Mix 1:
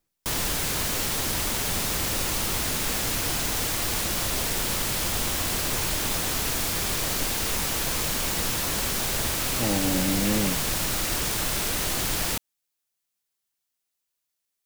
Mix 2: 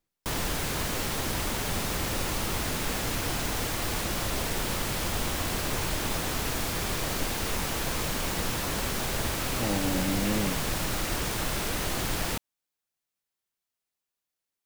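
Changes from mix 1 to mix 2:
speech −3.5 dB
background: add high-shelf EQ 3,000 Hz −7.5 dB

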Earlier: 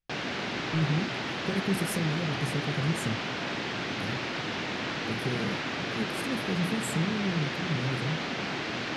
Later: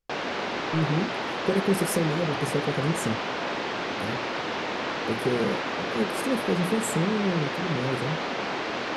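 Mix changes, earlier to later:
speech +5.5 dB
master: add octave-band graphic EQ 125/500/1,000 Hz −7/+6/+6 dB

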